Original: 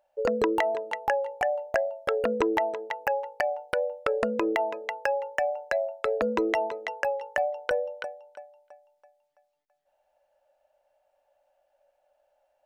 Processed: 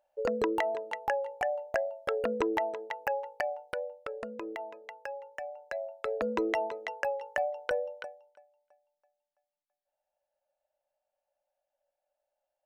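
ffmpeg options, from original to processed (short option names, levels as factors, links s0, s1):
-af "volume=1.68,afade=t=out:st=3.32:d=0.8:silence=0.375837,afade=t=in:st=5.51:d=0.9:silence=0.354813,afade=t=out:st=7.86:d=0.53:silence=0.281838"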